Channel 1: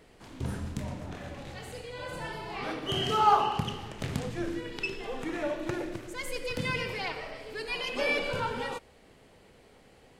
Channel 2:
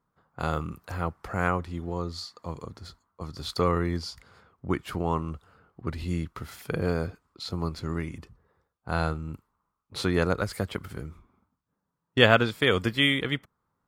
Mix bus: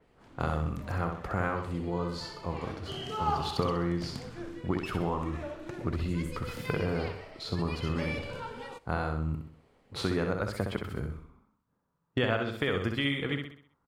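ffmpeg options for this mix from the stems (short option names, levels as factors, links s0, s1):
-filter_complex "[0:a]adynamicequalizer=threshold=0.00398:dfrequency=3700:dqfactor=0.7:tfrequency=3700:tqfactor=0.7:attack=5:release=100:ratio=0.375:range=3:mode=boostabove:tftype=highshelf,volume=0.422,asplit=2[s0][s1];[s1]volume=0.0708[s2];[1:a]acompressor=threshold=0.0355:ratio=4,volume=1.26,asplit=2[s3][s4];[s4]volume=0.531[s5];[s2][s5]amix=inputs=2:normalize=0,aecho=0:1:64|128|192|256|320|384:1|0.43|0.185|0.0795|0.0342|0.0147[s6];[s0][s3][s6]amix=inputs=3:normalize=0,highshelf=f=3500:g=-9"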